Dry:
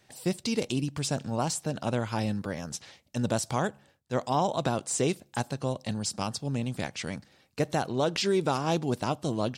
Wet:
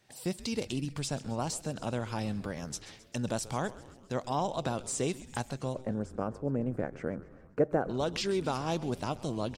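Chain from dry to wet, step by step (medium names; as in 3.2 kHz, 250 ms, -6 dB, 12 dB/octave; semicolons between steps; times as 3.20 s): recorder AGC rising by 19 dB/s; 5.74–7.89 s: FFT filter 150 Hz 0 dB, 510 Hz +10 dB, 880 Hz -2 dB, 1.5 kHz +3 dB, 3.8 kHz -28 dB, 6.8 kHz -20 dB; frequency-shifting echo 132 ms, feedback 62%, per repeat -130 Hz, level -17 dB; trim -5 dB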